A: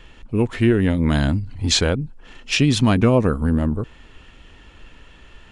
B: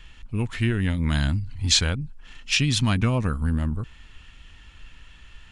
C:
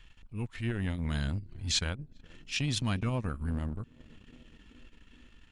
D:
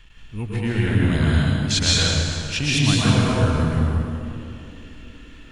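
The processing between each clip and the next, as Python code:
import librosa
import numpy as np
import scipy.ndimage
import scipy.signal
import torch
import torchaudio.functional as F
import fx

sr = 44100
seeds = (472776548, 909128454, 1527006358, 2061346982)

y1 = fx.peak_eq(x, sr, hz=440.0, db=-14.0, octaves=2.2)
y2 = fx.echo_banded(y1, sr, ms=419, feedback_pct=77, hz=320.0, wet_db=-18.5)
y2 = fx.transient(y2, sr, attack_db=-8, sustain_db=-12)
y2 = y2 * 10.0 ** (-7.5 / 20.0)
y3 = fx.rev_plate(y2, sr, seeds[0], rt60_s=2.4, hf_ratio=0.8, predelay_ms=105, drr_db=-7.0)
y3 = y3 * 10.0 ** (6.5 / 20.0)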